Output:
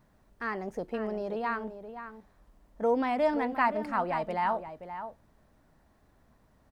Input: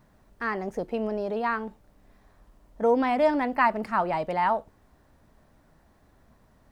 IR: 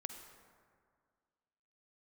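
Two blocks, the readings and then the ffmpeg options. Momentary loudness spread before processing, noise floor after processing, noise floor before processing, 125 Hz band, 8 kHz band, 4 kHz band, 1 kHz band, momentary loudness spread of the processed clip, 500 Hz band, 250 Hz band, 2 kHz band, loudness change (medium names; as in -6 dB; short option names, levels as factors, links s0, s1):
9 LU, -66 dBFS, -62 dBFS, -4.0 dB, no reading, -4.5 dB, -4.0 dB, 15 LU, -4.0 dB, -4.0 dB, -4.5 dB, -5.0 dB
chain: -filter_complex "[0:a]asplit=2[s0][s1];[s1]adelay=524.8,volume=0.316,highshelf=f=4000:g=-11.8[s2];[s0][s2]amix=inputs=2:normalize=0,volume=0.596"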